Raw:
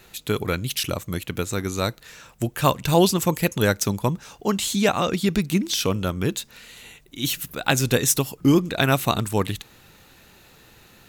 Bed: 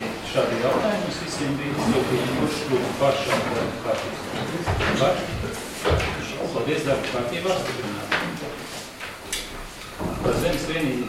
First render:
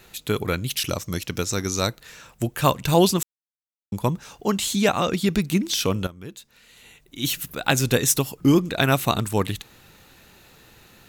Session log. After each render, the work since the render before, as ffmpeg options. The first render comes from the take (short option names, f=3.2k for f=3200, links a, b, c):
-filter_complex "[0:a]asettb=1/sr,asplit=3[a][b][c];[a]atrim=end=0.874[d];[b]atrim=start=0.87:end=1.87,asetpts=PTS-STARTPTS,afade=t=in:d=0.004:c=qsin,afade=t=out:st=0.996:d=0.004:c=qsin,equalizer=f=5.5k:t=o:w=0.47:g=14.5[e];[c]atrim=start=1.866[f];[d][e]acrossfade=d=0.004:c1=hsin:c2=qsin[g];[g][f]acrossfade=d=0.004:c1=qsin:c2=hsin,asplit=4[h][i][j][k];[h]atrim=end=3.23,asetpts=PTS-STARTPTS,afade=t=out:st=3.226:d=0.004:c=hsin[l];[i]atrim=start=3.23:end=3.92,asetpts=PTS-STARTPTS,volume=0[m];[j]atrim=start=3.92:end=6.07,asetpts=PTS-STARTPTS,afade=t=in:d=0.004:c=hsin,afade=t=out:st=2.146:d=0.004:c=hsin:silence=0.16788[n];[k]atrim=start=6.07,asetpts=PTS-STARTPTS,afade=t=in:d=1.18:c=qua:silence=0.16788[o];[l][m][n][o]concat=n=4:v=0:a=1"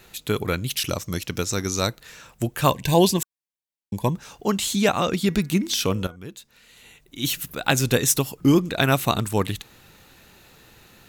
-filter_complex "[0:a]asettb=1/sr,asplit=3[a][b][c];[a]atrim=end=2.704[d];[b]atrim=start=2.7:end=4.15,asetpts=PTS-STARTPTS,afade=t=in:d=0.004:c=qsin,afade=t=out:st=1.446:d=0.004:c=qsin,asuperstop=centerf=1300:order=12:qfactor=3.8[e];[c]atrim=start=4.146[f];[d][e]acrossfade=d=0.004:c1=hsin:c2=qsin[g];[g][f]acrossfade=d=0.004:c1=qsin:c2=hsin,asettb=1/sr,asplit=3[h][i][j];[h]atrim=end=5.154[k];[i]atrim=start=5.15:end=6.16,asetpts=PTS-STARTPTS,afade=t=in:d=0.004:c=qsin,afade=t=out:st=1.006:d=0.004:c=qsin,bandreject=f=241.8:t=h:w=4,bandreject=f=483.6:t=h:w=4,bandreject=f=725.4:t=h:w=4,bandreject=f=967.2:t=h:w=4,bandreject=f=1.209k:t=h:w=4,bandreject=f=1.4508k:t=h:w=4,bandreject=f=1.6926k:t=h:w=4,bandreject=f=1.9344k:t=h:w=4,bandreject=f=2.1762k:t=h:w=4[l];[j]atrim=start=6.156[m];[k][l]acrossfade=d=0.004:c1=hsin:c2=qsin[n];[n][m]acrossfade=d=0.004:c1=qsin:c2=hsin"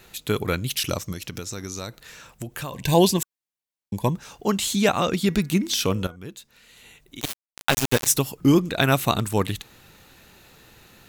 -filter_complex "[0:a]asettb=1/sr,asplit=3[a][b][c];[a]atrim=end=1.124[d];[b]atrim=start=1.12:end=2.73,asetpts=PTS-STARTPTS,afade=t=in:d=0.004:c=qsin,afade=t=out:st=1.606:d=0.004:c=qsin,acompressor=threshold=-29dB:ratio=6:attack=3.2:release=140:knee=1:detection=peak[e];[c]atrim=start=2.726[f];[d][e]acrossfade=d=0.004:c1=hsin:c2=qsin[g];[g][f]acrossfade=d=0.004:c1=qsin:c2=hsin,asplit=3[h][i][j];[h]afade=t=out:st=7.19:d=0.02[k];[i]aeval=exprs='val(0)*gte(abs(val(0)),0.133)':c=same,afade=t=in:st=7.19:d=0.02,afade=t=out:st=8.06:d=0.02[l];[j]afade=t=in:st=8.06:d=0.02[m];[k][l][m]amix=inputs=3:normalize=0"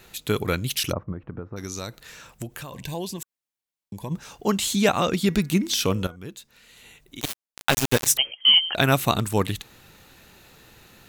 -filter_complex "[0:a]asplit=3[a][b][c];[a]afade=t=out:st=0.91:d=0.02[d];[b]lowpass=f=1.3k:w=0.5412,lowpass=f=1.3k:w=1.3066,afade=t=in:st=0.91:d=0.02,afade=t=out:st=1.56:d=0.02[e];[c]afade=t=in:st=1.56:d=0.02[f];[d][e][f]amix=inputs=3:normalize=0,asplit=3[g][h][i];[g]afade=t=out:st=2.46:d=0.02[j];[h]acompressor=threshold=-35dB:ratio=2.5:attack=3.2:release=140:knee=1:detection=peak,afade=t=in:st=2.46:d=0.02,afade=t=out:st=4.1:d=0.02[k];[i]afade=t=in:st=4.1:d=0.02[l];[j][k][l]amix=inputs=3:normalize=0,asettb=1/sr,asplit=3[m][n][o];[m]atrim=end=8.174[p];[n]atrim=start=8.17:end=8.75,asetpts=PTS-STARTPTS,afade=t=in:d=0.004:c=qsin,afade=t=out:st=0.576:d=0.004:c=qsin,lowpass=f=2.8k:t=q:w=0.5098,lowpass=f=2.8k:t=q:w=0.6013,lowpass=f=2.8k:t=q:w=0.9,lowpass=f=2.8k:t=q:w=2.563,afreqshift=-3300[q];[o]atrim=start=8.746[r];[p][q]acrossfade=d=0.004:c1=hsin:c2=qsin[s];[s][r]acrossfade=d=0.004:c1=qsin:c2=hsin"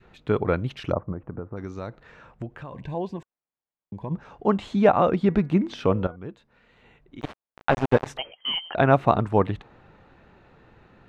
-af "lowpass=1.5k,adynamicequalizer=threshold=0.0141:dfrequency=700:dqfactor=0.98:tfrequency=700:tqfactor=0.98:attack=5:release=100:ratio=0.375:range=3:mode=boostabove:tftype=bell"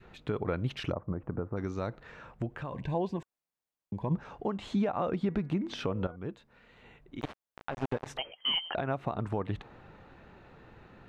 -af "acompressor=threshold=-21dB:ratio=12,alimiter=limit=-21dB:level=0:latency=1:release=305"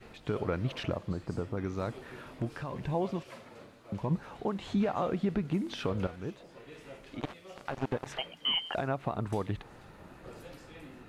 -filter_complex "[1:a]volume=-26.5dB[a];[0:a][a]amix=inputs=2:normalize=0"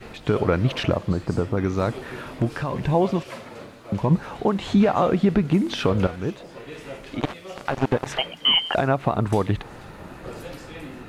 -af "volume=11.5dB"